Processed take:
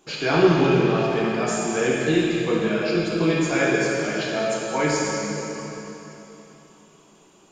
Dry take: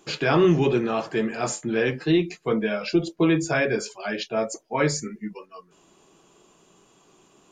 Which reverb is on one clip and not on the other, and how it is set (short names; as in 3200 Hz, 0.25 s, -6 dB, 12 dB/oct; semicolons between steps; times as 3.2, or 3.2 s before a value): plate-style reverb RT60 3.3 s, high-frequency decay 0.95×, DRR -5 dB; gain -3 dB